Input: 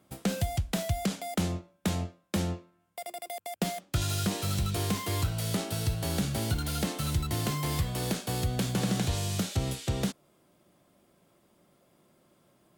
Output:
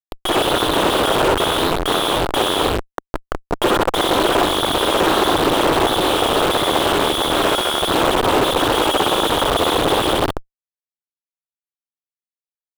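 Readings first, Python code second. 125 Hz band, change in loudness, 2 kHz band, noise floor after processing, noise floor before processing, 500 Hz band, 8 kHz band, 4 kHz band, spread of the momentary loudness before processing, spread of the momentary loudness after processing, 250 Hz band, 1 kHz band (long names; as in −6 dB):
0.0 dB, +14.5 dB, +18.5 dB, below −85 dBFS, −67 dBFS, +20.5 dB, +9.0 dB, +19.0 dB, 6 LU, 5 LU, +11.5 dB, +21.5 dB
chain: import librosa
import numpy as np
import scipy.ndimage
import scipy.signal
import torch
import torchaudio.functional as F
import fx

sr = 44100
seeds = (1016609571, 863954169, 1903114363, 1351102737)

y = fx.freq_invert(x, sr, carrier_hz=3500)
y = fx.low_shelf(y, sr, hz=230.0, db=-4.0)
y = fx.room_flutter(y, sr, wall_m=11.0, rt60_s=1.3)
y = fx.schmitt(y, sr, flips_db=-30.0)
y = fx.band_shelf(y, sr, hz=640.0, db=13.0, octaves=2.6)
y = fx.doppler_dist(y, sr, depth_ms=0.38)
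y = y * 10.0 ** (6.5 / 20.0)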